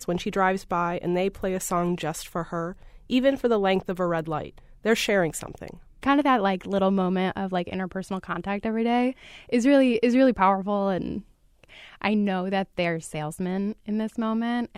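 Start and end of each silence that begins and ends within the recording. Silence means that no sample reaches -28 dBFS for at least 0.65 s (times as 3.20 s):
11.19–12.02 s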